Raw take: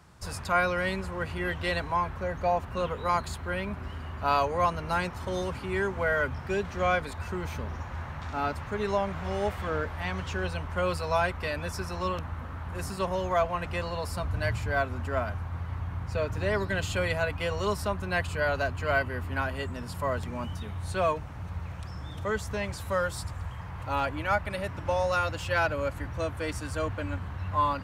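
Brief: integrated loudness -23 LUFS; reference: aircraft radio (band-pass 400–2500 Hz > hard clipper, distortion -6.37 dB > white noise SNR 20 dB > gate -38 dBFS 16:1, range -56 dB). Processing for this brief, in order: band-pass 400–2500 Hz; hard clipper -31 dBFS; white noise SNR 20 dB; gate -38 dBFS 16:1, range -56 dB; trim +13.5 dB

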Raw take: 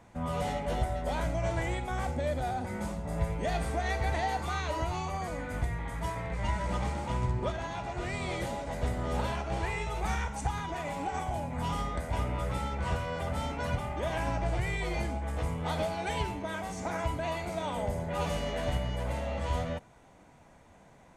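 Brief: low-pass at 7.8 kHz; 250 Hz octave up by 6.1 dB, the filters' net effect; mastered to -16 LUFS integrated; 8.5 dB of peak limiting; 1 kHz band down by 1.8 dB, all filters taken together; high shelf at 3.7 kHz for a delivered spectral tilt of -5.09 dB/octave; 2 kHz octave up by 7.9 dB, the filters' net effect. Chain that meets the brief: low-pass 7.8 kHz; peaking EQ 250 Hz +8.5 dB; peaking EQ 1 kHz -5.5 dB; peaking EQ 2 kHz +8.5 dB; treble shelf 3.7 kHz +8.5 dB; trim +17 dB; peak limiter -7 dBFS

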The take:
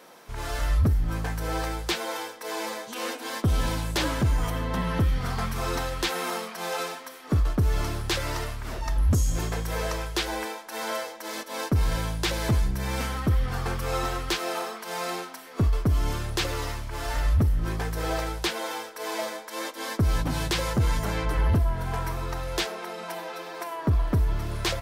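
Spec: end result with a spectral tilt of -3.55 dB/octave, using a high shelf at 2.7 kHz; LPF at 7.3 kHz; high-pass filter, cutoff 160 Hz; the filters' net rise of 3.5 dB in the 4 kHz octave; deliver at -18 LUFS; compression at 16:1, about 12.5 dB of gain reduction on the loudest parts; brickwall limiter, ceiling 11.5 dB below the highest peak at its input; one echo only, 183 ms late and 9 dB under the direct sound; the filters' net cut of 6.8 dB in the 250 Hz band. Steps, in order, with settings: high-pass 160 Hz; low-pass 7.3 kHz; peaking EQ 250 Hz -8.5 dB; treble shelf 2.7 kHz -3.5 dB; peaking EQ 4 kHz +7.5 dB; compression 16:1, threshold -34 dBFS; peak limiter -29.5 dBFS; delay 183 ms -9 dB; trim +20.5 dB

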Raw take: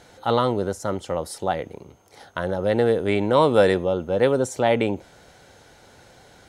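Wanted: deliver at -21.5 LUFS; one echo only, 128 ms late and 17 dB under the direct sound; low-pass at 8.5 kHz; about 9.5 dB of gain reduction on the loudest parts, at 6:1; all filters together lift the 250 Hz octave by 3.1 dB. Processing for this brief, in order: low-pass 8.5 kHz; peaking EQ 250 Hz +4 dB; compression 6:1, threshold -21 dBFS; delay 128 ms -17 dB; trim +5.5 dB

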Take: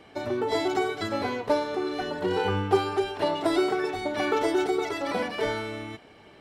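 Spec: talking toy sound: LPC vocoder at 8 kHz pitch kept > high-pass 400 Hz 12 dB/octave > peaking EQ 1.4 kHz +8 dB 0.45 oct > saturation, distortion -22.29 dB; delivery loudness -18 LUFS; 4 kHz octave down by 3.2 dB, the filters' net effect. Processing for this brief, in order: peaking EQ 4 kHz -4.5 dB; LPC vocoder at 8 kHz pitch kept; high-pass 400 Hz 12 dB/octave; peaking EQ 1.4 kHz +8 dB 0.45 oct; saturation -16 dBFS; trim +13 dB

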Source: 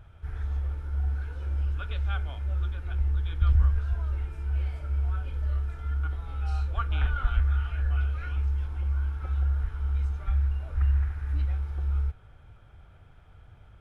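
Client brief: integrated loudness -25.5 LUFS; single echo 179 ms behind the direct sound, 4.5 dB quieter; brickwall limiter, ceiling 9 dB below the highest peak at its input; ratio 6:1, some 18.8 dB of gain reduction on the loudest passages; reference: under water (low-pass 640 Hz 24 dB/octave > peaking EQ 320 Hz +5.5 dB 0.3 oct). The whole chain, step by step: compression 6:1, threshold -38 dBFS; peak limiter -37 dBFS; low-pass 640 Hz 24 dB/octave; peaking EQ 320 Hz +5.5 dB 0.3 oct; delay 179 ms -4.5 dB; trim +21.5 dB

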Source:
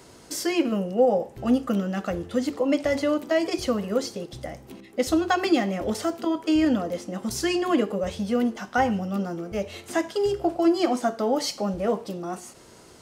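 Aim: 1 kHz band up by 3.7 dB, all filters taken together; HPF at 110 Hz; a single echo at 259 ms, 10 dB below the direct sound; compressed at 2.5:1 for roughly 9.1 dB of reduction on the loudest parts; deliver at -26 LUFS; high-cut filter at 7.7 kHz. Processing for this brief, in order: high-pass 110 Hz; low-pass 7.7 kHz; peaking EQ 1 kHz +5.5 dB; compression 2.5:1, threshold -28 dBFS; delay 259 ms -10 dB; trim +4 dB

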